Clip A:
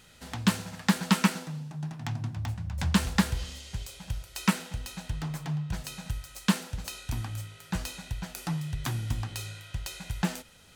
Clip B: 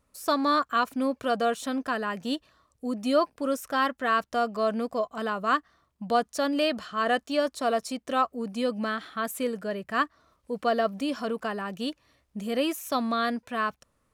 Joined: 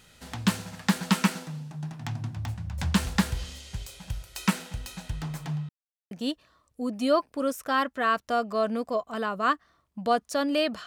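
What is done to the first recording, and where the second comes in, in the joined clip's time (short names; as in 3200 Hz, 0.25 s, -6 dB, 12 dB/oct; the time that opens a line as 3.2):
clip A
5.69–6.11 mute
6.11 switch to clip B from 2.15 s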